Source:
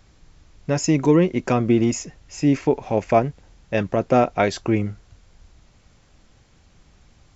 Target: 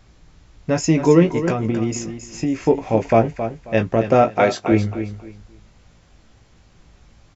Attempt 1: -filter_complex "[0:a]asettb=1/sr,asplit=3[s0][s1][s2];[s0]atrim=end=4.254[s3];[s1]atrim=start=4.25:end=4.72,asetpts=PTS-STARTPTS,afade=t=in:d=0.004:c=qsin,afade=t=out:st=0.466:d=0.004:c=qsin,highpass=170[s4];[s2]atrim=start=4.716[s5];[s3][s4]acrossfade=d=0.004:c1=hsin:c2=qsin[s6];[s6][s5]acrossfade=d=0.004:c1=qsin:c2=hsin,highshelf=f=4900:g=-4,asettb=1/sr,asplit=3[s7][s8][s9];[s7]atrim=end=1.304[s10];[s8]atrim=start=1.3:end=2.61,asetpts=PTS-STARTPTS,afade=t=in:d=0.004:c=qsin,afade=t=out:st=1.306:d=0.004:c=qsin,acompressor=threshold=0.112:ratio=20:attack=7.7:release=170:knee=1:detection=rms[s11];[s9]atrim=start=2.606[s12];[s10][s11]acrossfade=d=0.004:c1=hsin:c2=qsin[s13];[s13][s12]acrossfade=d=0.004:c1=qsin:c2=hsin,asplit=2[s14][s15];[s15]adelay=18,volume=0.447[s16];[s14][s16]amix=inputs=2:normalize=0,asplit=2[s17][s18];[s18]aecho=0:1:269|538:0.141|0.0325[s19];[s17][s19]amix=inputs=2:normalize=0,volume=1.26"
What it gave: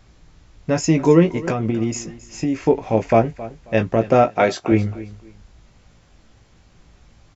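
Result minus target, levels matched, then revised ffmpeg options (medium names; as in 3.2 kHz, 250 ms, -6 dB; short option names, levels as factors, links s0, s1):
echo-to-direct -7 dB
-filter_complex "[0:a]asettb=1/sr,asplit=3[s0][s1][s2];[s0]atrim=end=4.254[s3];[s1]atrim=start=4.25:end=4.72,asetpts=PTS-STARTPTS,afade=t=in:d=0.004:c=qsin,afade=t=out:st=0.466:d=0.004:c=qsin,highpass=170[s4];[s2]atrim=start=4.716[s5];[s3][s4]acrossfade=d=0.004:c1=hsin:c2=qsin[s6];[s6][s5]acrossfade=d=0.004:c1=qsin:c2=hsin,highshelf=f=4900:g=-4,asettb=1/sr,asplit=3[s7][s8][s9];[s7]atrim=end=1.304[s10];[s8]atrim=start=1.3:end=2.61,asetpts=PTS-STARTPTS,afade=t=in:d=0.004:c=qsin,afade=t=out:st=1.306:d=0.004:c=qsin,acompressor=threshold=0.112:ratio=20:attack=7.7:release=170:knee=1:detection=rms[s11];[s9]atrim=start=2.606[s12];[s10][s11]acrossfade=d=0.004:c1=hsin:c2=qsin[s13];[s13][s12]acrossfade=d=0.004:c1=qsin:c2=hsin,asplit=2[s14][s15];[s15]adelay=18,volume=0.447[s16];[s14][s16]amix=inputs=2:normalize=0,asplit=2[s17][s18];[s18]aecho=0:1:269|538|807:0.316|0.0727|0.0167[s19];[s17][s19]amix=inputs=2:normalize=0,volume=1.26"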